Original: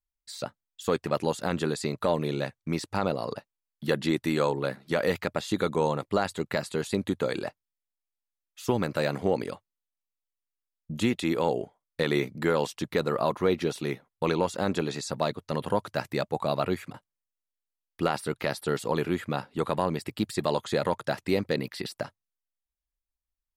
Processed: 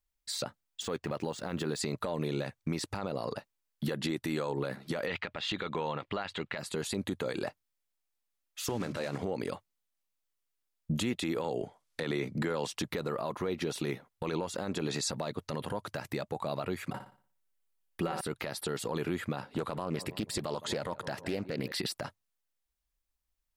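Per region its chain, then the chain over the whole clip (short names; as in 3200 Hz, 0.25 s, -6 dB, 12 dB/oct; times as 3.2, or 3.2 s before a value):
0.82–1.79 LPF 11000 Hz + decimation joined by straight lines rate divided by 3×
5.06–6.58 EQ curve 400 Hz 0 dB, 3000 Hz +11 dB, 11000 Hz -18 dB + mismatched tape noise reduction decoder only
8.69–9.23 block floating point 5-bit + LPF 7700 Hz + notches 50/100/150/200/250 Hz
11.44–12.75 LPF 11000 Hz + three-band squash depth 40%
16.9–18.21 bell 5000 Hz -3.5 dB 1.4 oct + comb 5.3 ms, depth 49% + flutter echo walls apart 10.1 m, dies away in 0.42 s
19.38–21.72 darkening echo 0.162 s, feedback 58%, low-pass 1300 Hz, level -23 dB + Doppler distortion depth 0.29 ms
whole clip: compressor, threshold -30 dBFS; limiter -27.5 dBFS; gain +5 dB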